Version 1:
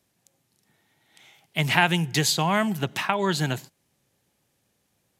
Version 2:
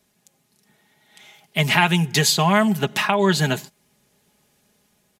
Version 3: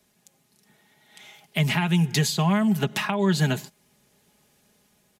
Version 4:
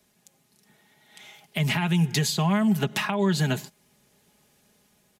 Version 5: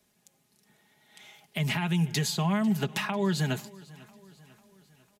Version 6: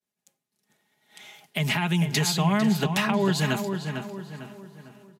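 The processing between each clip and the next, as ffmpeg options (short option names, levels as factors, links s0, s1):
-filter_complex "[0:a]aecho=1:1:4.8:0.58,dynaudnorm=f=370:g=5:m=1.5,asplit=2[s0][s1];[s1]alimiter=limit=0.237:level=0:latency=1:release=493,volume=0.841[s2];[s0][s2]amix=inputs=2:normalize=0,volume=0.891"
-filter_complex "[0:a]acrossover=split=270[s0][s1];[s1]acompressor=threshold=0.0562:ratio=5[s2];[s0][s2]amix=inputs=2:normalize=0"
-af "alimiter=limit=0.2:level=0:latency=1:release=96"
-af "aecho=1:1:497|994|1491|1988:0.0794|0.0421|0.0223|0.0118,volume=0.631"
-filter_complex "[0:a]lowshelf=f=87:g=-12,agate=range=0.0224:threshold=0.00141:ratio=3:detection=peak,asplit=2[s0][s1];[s1]adelay=451,lowpass=f=2800:p=1,volume=0.473,asplit=2[s2][s3];[s3]adelay=451,lowpass=f=2800:p=1,volume=0.42,asplit=2[s4][s5];[s5]adelay=451,lowpass=f=2800:p=1,volume=0.42,asplit=2[s6][s7];[s7]adelay=451,lowpass=f=2800:p=1,volume=0.42,asplit=2[s8][s9];[s9]adelay=451,lowpass=f=2800:p=1,volume=0.42[s10];[s0][s2][s4][s6][s8][s10]amix=inputs=6:normalize=0,volume=1.78"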